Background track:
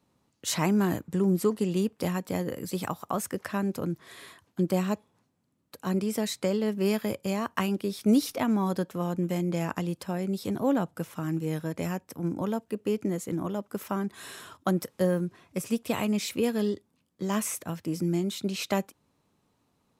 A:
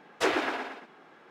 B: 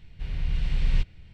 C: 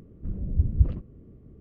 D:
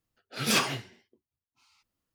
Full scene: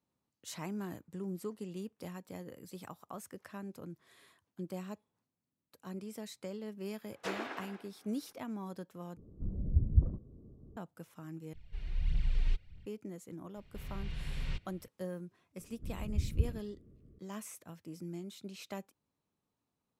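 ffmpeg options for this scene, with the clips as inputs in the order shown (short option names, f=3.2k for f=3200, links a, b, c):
-filter_complex "[3:a]asplit=2[a][b];[2:a]asplit=2[c][d];[0:a]volume=-15.5dB[e];[a]lowpass=f=1.1k:w=0.5412,lowpass=f=1.1k:w=1.3066[f];[c]aphaser=in_gain=1:out_gain=1:delay=3.3:decay=0.58:speed=1.6:type=triangular[g];[d]lowshelf=f=73:g=-9[h];[b]asuperstop=centerf=870:order=4:qfactor=2.1[i];[e]asplit=3[j][k][l];[j]atrim=end=9.174[m];[f]atrim=end=1.6,asetpts=PTS-STARTPTS,volume=-5.5dB[n];[k]atrim=start=10.766:end=11.534[o];[g]atrim=end=1.33,asetpts=PTS-STARTPTS,volume=-12dB[p];[l]atrim=start=12.856[q];[1:a]atrim=end=1.3,asetpts=PTS-STARTPTS,volume=-12.5dB,afade=t=in:d=0.004:c=hsin,afade=t=out:st=1.296:d=0.004:c=hsin,adelay=7030[r];[h]atrim=end=1.33,asetpts=PTS-STARTPTS,volume=-7.5dB,afade=t=in:d=0.004:c=hsin,afade=t=out:st=1.326:d=0.004:c=hsin,adelay=13550[s];[i]atrim=end=1.6,asetpts=PTS-STARTPTS,volume=-10dB,afade=t=in:d=0.004:c=hsin,afade=t=out:st=1.596:d=0.004:c=hsin,adelay=15590[t];[m][n]acrossfade=d=0.004:c1=hsin:c2=hsin[u];[u][o]acrossfade=d=0.004:c1=hsin:c2=hsin[v];[v][p]acrossfade=d=0.004:c1=hsin:c2=hsin[w];[w][q]acrossfade=d=0.004:c1=hsin:c2=hsin[x];[x][r][s][t]amix=inputs=4:normalize=0"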